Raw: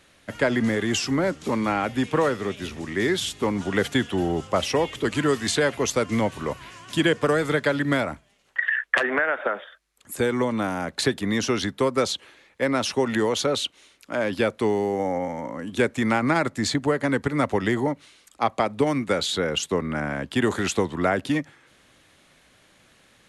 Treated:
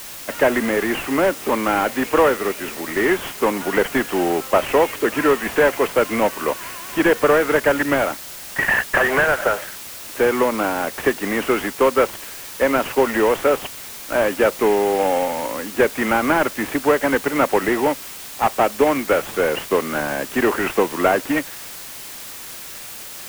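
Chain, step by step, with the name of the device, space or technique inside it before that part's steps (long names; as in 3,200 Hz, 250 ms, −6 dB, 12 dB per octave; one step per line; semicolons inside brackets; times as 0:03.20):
army field radio (band-pass filter 370–2,900 Hz; variable-slope delta modulation 16 kbit/s; white noise bed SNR 15 dB)
level +9 dB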